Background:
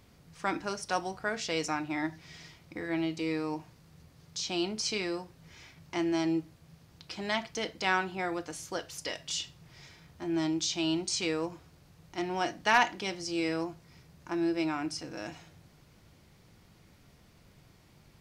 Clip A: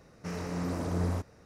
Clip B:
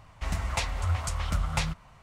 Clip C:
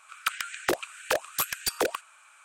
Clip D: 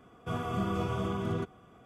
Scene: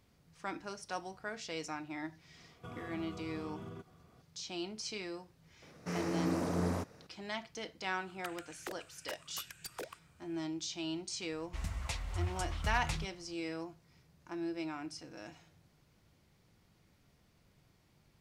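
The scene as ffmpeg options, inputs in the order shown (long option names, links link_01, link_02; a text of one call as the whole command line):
ffmpeg -i bed.wav -i cue0.wav -i cue1.wav -i cue2.wav -i cue3.wav -filter_complex "[0:a]volume=-9dB[link_01];[4:a]alimiter=level_in=6.5dB:limit=-24dB:level=0:latency=1:release=82,volume=-6.5dB[link_02];[1:a]highpass=140[link_03];[2:a]equalizer=frequency=830:width_type=o:width=2.7:gain=-5.5[link_04];[link_02]atrim=end=1.85,asetpts=PTS-STARTPTS,volume=-8.5dB,afade=type=in:duration=0.004:curve=hsin,afade=type=out:start_time=1.846:duration=0.004:curve=hsin,adelay=2370[link_05];[link_03]atrim=end=1.45,asetpts=PTS-STARTPTS,afade=type=in:duration=0.004:curve=hsin,afade=type=out:start_time=1.446:duration=0.004:curve=hsin,adelay=5620[link_06];[3:a]atrim=end=2.44,asetpts=PTS-STARTPTS,volume=-17.5dB,afade=type=in:duration=0.004:curve=hsin,afade=type=out:start_time=2.436:duration=0.004:curve=hsin,adelay=7980[link_07];[link_04]atrim=end=2.02,asetpts=PTS-STARTPTS,volume=-8dB,afade=type=in:duration=0.004:curve=hsin,afade=type=out:start_time=2.016:duration=0.004:curve=hsin,adelay=11320[link_08];[link_01][link_05][link_06][link_07][link_08]amix=inputs=5:normalize=0" out.wav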